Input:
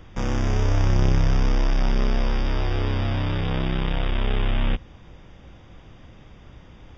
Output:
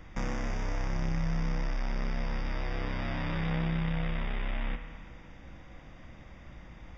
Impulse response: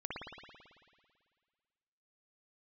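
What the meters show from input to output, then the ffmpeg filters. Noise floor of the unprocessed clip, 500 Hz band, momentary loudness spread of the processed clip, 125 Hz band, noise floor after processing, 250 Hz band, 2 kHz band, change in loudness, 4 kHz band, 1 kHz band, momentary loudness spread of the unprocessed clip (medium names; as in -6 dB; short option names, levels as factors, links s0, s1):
-47 dBFS, -10.5 dB, 19 LU, -11.0 dB, -50 dBFS, -7.5 dB, -5.5 dB, -10.0 dB, -11.5 dB, -8.0 dB, 5 LU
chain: -filter_complex "[0:a]equalizer=f=100:t=o:w=0.33:g=-9,equalizer=f=400:t=o:w=0.33:g=-8,equalizer=f=2000:t=o:w=0.33:g=6,equalizer=f=3150:t=o:w=0.33:g=-6,acompressor=threshold=0.0447:ratio=3,asplit=2[s0][s1];[1:a]atrim=start_sample=2205[s2];[s1][s2]afir=irnorm=-1:irlink=0,volume=0.596[s3];[s0][s3]amix=inputs=2:normalize=0,volume=0.531"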